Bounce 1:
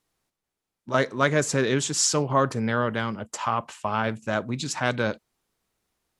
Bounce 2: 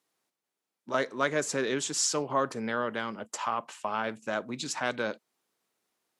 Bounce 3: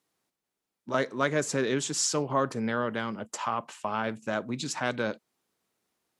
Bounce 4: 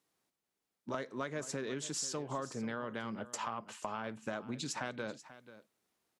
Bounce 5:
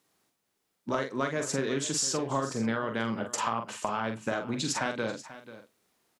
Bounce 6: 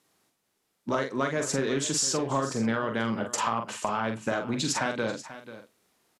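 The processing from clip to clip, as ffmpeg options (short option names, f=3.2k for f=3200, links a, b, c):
-filter_complex "[0:a]highpass=240,asplit=2[a][b];[b]acompressor=threshold=-32dB:ratio=6,volume=-1.5dB[c];[a][c]amix=inputs=2:normalize=0,volume=-7dB"
-af "lowshelf=f=180:g=11"
-af "acompressor=threshold=-33dB:ratio=6,aecho=1:1:487:0.168,volume=-2.5dB"
-filter_complex "[0:a]asplit=2[a][b];[b]adelay=44,volume=-6dB[c];[a][c]amix=inputs=2:normalize=0,volume=8dB"
-filter_complex "[0:a]asplit=2[a][b];[b]asoftclip=type=tanh:threshold=-26dB,volume=-7dB[c];[a][c]amix=inputs=2:normalize=0,aresample=32000,aresample=44100"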